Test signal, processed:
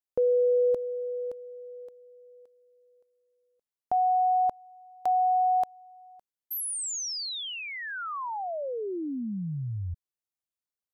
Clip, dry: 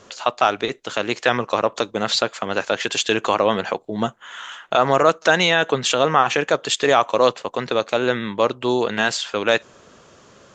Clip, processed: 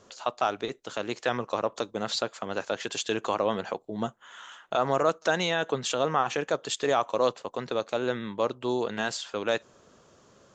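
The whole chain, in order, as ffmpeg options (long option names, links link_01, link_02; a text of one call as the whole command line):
ffmpeg -i in.wav -af "equalizer=frequency=2300:width=0.92:gain=-5,volume=-8dB" out.wav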